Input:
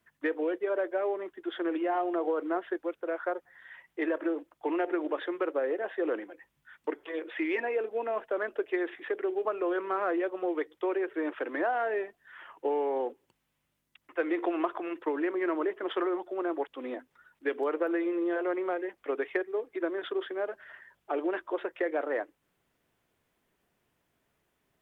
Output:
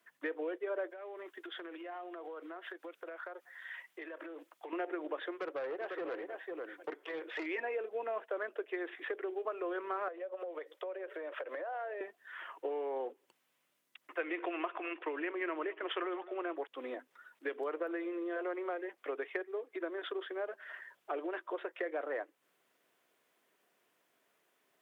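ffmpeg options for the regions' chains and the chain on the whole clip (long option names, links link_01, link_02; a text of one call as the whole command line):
ffmpeg -i in.wav -filter_complex "[0:a]asettb=1/sr,asplit=3[link_01][link_02][link_03];[link_01]atrim=end=0.904[link_04];[link_02]atrim=start=0.9:end=4.73,asetpts=PTS-STARTPTS,afade=type=in:duration=0.004:curve=qsin,afade=type=out:start_time=3.826:duration=0.004:curve=qsin,tiltshelf=frequency=1300:gain=-4,acompressor=threshold=-42dB:ratio=12:attack=3.2:release=140:knee=1:detection=peak[link_05];[link_03]atrim=start=4.726[link_06];[link_04][link_05]acrossfade=duration=0.004:curve1=hsin:curve2=qsin[link_07];[link_07][link_06]acrossfade=duration=0.004:curve1=qsin:curve2=hsin,asettb=1/sr,asplit=3[link_08][link_09][link_10];[link_08]atrim=end=5.314[link_11];[link_09]atrim=start=5.31:end=7.46,asetpts=PTS-STARTPTS,afade=type=in:duration=0.004:curve=qsin,afade=type=out:start_time=2.146:duration=0.004:curve=qsin,aecho=1:1:498:0.398,atrim=end_sample=94815,aeval=exprs='(tanh(25.1*val(0)+0.35)-tanh(0.35))/25.1':channel_layout=same[link_12];[link_10]atrim=start=7.456[link_13];[link_11][link_12]acrossfade=duration=0.004:curve1=hsin:curve2=qsin[link_14];[link_14][link_13]acrossfade=duration=0.004:curve1=qsin:curve2=hsin,asettb=1/sr,asplit=3[link_15][link_16][link_17];[link_15]atrim=end=10.084[link_18];[link_16]atrim=start=10.08:end=12.01,asetpts=PTS-STARTPTS,afade=type=in:duration=0.004:curve=qsin,afade=type=out:start_time=1.926:duration=0.004:curve=qsin,equalizer=frequency=560:width=4:gain=14.5,acompressor=threshold=-33dB:ratio=16:attack=3.2:release=140:knee=1:detection=peak,highpass=440[link_19];[link_17]atrim=start=12.006[link_20];[link_18][link_19]acrossfade=duration=0.004:curve1=hsin:curve2=qsin[link_21];[link_21][link_20]acrossfade=duration=0.004:curve1=qsin:curve2=hsin,asettb=1/sr,asplit=3[link_22][link_23][link_24];[link_22]atrim=end=14.194[link_25];[link_23]atrim=start=14.19:end=16.56,asetpts=PTS-STARTPTS,afade=type=in:duration=0.004:curve=qsin,afade=type=out:start_time=2.366:duration=0.004:curve=qsin,lowpass=frequency=2700:width_type=q:width=2.9,aecho=1:1:209:0.075,atrim=end_sample=104517[link_26];[link_24]atrim=start=16.556[link_27];[link_25][link_26]acrossfade=duration=0.004:curve1=hsin:curve2=qsin[link_28];[link_28][link_27]acrossfade=duration=0.004:curve1=qsin:curve2=hsin,acompressor=threshold=-42dB:ratio=2,highpass=370,bandreject=frequency=860:width=15,volume=2.5dB" out.wav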